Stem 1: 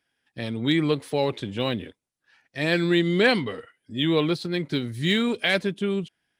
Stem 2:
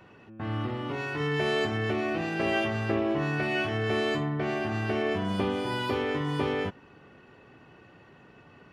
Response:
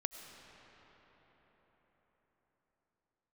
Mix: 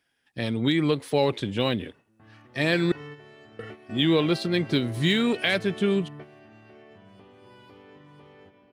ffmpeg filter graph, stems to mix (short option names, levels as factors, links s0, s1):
-filter_complex "[0:a]alimiter=limit=0.211:level=0:latency=1:release=253,volume=1.33,asplit=3[s0][s1][s2];[s0]atrim=end=2.92,asetpts=PTS-STARTPTS,afade=t=out:st=2.916:d=0.004:c=hsin[s3];[s1]atrim=start=2.92:end=3.59,asetpts=PTS-STARTPTS,volume=0[s4];[s2]atrim=start=3.59,asetpts=PTS-STARTPTS,afade=t=in:d=0.004:c=hsin[s5];[s3][s4][s5]concat=n=3:v=0:a=1,asplit=2[s6][s7];[1:a]acompressor=threshold=0.02:ratio=2,adelay=1800,volume=0.316,asplit=2[s8][s9];[s9]volume=0.422[s10];[s7]apad=whole_len=464257[s11];[s8][s11]sidechaingate=range=0.0224:threshold=0.00316:ratio=16:detection=peak[s12];[2:a]atrim=start_sample=2205[s13];[s10][s13]afir=irnorm=-1:irlink=0[s14];[s6][s12][s14]amix=inputs=3:normalize=0"